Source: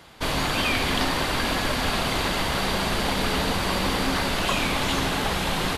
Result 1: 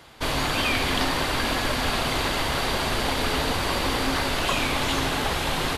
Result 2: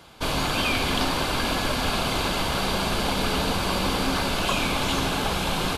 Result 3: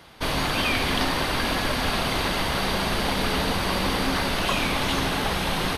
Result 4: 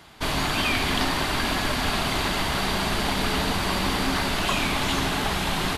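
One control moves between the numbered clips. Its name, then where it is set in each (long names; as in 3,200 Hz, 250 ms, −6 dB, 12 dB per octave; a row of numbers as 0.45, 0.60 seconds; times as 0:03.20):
notch filter, centre frequency: 190, 1,900, 7,300, 510 Hertz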